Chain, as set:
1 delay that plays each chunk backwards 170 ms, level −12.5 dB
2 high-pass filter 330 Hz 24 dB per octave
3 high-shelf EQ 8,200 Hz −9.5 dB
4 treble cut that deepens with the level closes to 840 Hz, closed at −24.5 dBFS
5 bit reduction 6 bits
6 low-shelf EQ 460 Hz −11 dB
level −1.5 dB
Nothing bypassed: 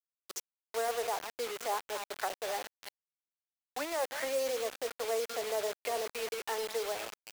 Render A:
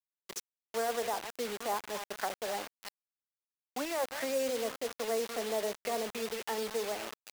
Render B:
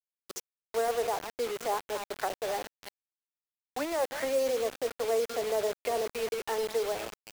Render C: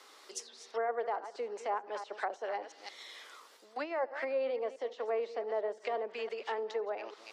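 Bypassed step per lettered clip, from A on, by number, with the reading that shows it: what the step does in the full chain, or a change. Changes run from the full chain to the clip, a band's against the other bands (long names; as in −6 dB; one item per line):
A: 2, 250 Hz band +8.0 dB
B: 6, 250 Hz band +7.0 dB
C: 5, distortion level −11 dB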